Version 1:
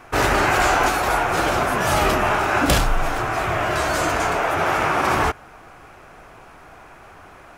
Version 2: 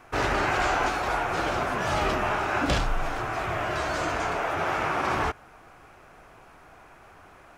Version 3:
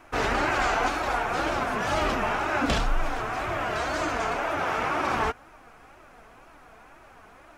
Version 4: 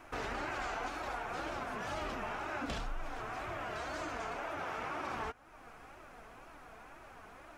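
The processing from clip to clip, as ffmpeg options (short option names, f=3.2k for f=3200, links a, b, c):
-filter_complex "[0:a]acrossover=split=6800[a][b];[b]acompressor=threshold=-50dB:ratio=4:attack=1:release=60[c];[a][c]amix=inputs=2:normalize=0,volume=-7dB"
-af "flanger=delay=3:depth=1.7:regen=40:speed=2:shape=triangular,volume=4dB"
-af "acompressor=threshold=-43dB:ratio=2,volume=-2.5dB"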